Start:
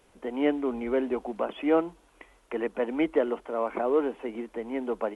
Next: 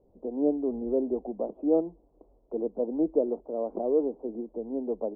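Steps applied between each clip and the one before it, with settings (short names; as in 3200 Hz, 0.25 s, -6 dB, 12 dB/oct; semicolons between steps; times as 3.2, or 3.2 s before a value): inverse Chebyshev low-pass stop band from 1700 Hz, stop band 50 dB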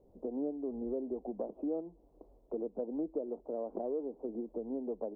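compressor 4:1, threshold -35 dBFS, peak gain reduction 14 dB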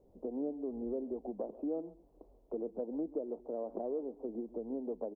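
echo 0.136 s -18 dB; gain -1 dB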